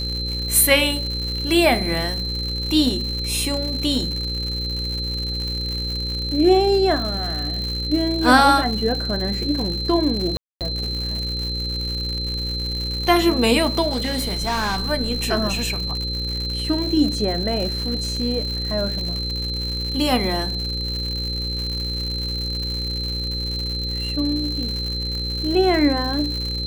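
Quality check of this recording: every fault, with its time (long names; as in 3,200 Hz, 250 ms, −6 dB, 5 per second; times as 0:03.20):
mains buzz 60 Hz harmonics 9 −28 dBFS
surface crackle 170 per second −26 dBFS
whistle 4,100 Hz −26 dBFS
0:10.37–0:10.61: drop-out 238 ms
0:13.90–0:14.85: clipping −19 dBFS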